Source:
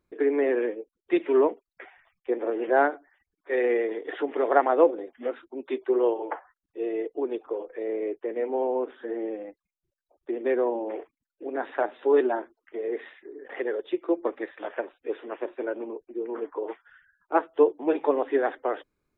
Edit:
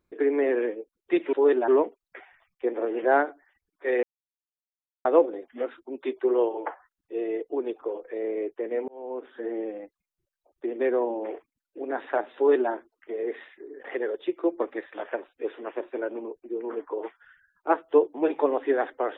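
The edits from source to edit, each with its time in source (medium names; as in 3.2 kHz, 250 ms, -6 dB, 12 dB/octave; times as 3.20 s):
3.68–4.70 s: mute
8.53–9.08 s: fade in
12.01–12.36 s: copy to 1.33 s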